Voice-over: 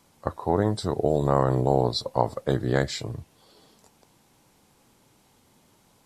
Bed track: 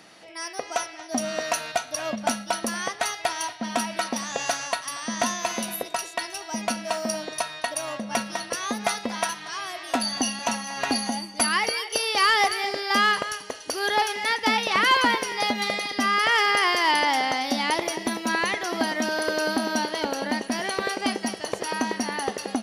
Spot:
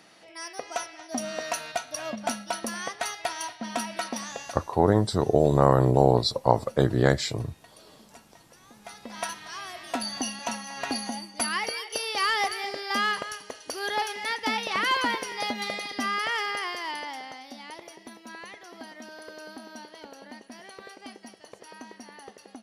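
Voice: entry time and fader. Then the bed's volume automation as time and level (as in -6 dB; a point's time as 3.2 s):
4.30 s, +2.5 dB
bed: 4.28 s -4.5 dB
4.8 s -26.5 dB
8.68 s -26.5 dB
9.25 s -5.5 dB
16.06 s -5.5 dB
17.5 s -18 dB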